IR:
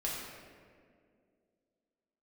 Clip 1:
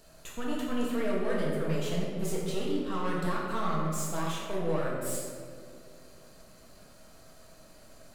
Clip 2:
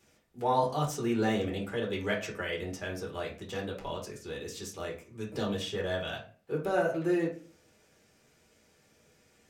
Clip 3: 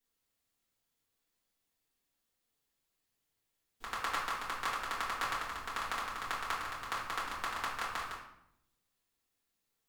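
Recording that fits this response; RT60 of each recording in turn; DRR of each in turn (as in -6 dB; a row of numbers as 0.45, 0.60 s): 1; 2.2, 0.40, 0.75 s; -5.5, -3.0, -8.0 dB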